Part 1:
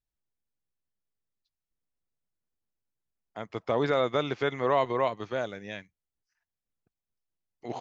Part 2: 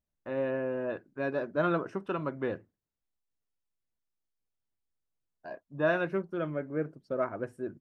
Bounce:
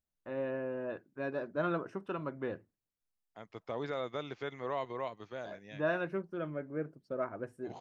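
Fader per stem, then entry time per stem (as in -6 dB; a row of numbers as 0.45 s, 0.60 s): -11.5 dB, -5.0 dB; 0.00 s, 0.00 s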